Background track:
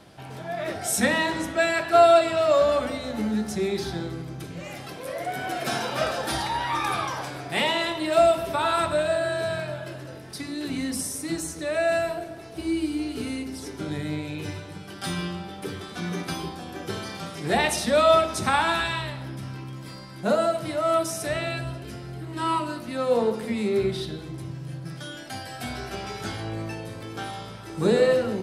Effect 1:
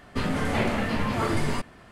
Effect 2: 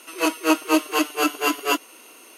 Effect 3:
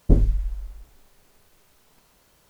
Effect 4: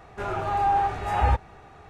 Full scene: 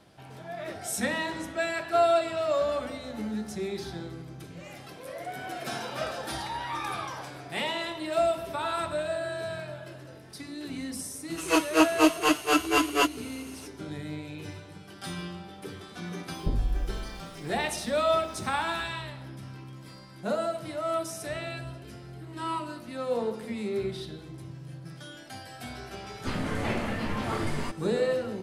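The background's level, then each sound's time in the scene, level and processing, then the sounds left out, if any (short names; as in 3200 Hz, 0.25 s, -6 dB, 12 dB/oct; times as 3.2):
background track -7 dB
11.3 add 2 -1.5 dB + CVSD 64 kbps
16.37 add 3 -2.5 dB + compressor, threshold -19 dBFS
26.1 add 1 -5 dB
not used: 4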